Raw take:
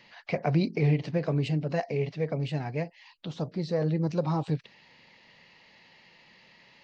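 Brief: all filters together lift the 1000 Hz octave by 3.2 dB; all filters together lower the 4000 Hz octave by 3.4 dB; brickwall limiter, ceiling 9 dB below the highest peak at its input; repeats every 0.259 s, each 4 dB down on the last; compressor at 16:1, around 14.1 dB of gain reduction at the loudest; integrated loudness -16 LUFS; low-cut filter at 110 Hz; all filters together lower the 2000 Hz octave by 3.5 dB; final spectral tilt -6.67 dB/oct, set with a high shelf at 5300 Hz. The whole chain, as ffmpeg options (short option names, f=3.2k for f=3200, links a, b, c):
-af "highpass=110,equalizer=f=1k:t=o:g=5.5,equalizer=f=2k:t=o:g=-5,equalizer=f=4k:t=o:g=-6.5,highshelf=f=5.3k:g=8.5,acompressor=threshold=-35dB:ratio=16,alimiter=level_in=8dB:limit=-24dB:level=0:latency=1,volume=-8dB,aecho=1:1:259|518|777|1036|1295|1554|1813|2072|2331:0.631|0.398|0.25|0.158|0.0994|0.0626|0.0394|0.0249|0.0157,volume=25dB"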